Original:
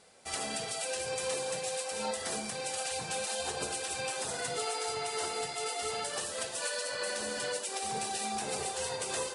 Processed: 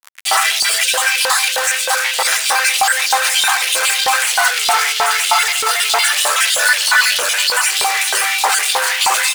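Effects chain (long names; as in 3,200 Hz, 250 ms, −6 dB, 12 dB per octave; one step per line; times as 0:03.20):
time-frequency cells dropped at random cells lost 36%
high-pass filter 300 Hz 12 dB per octave
tilt shelving filter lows +4.5 dB, about 1,200 Hz
fuzz pedal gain 60 dB, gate −52 dBFS
auto-filter high-pass saw up 3.2 Hz 860–3,600 Hz
on a send: repeating echo 685 ms, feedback 51%, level −17 dB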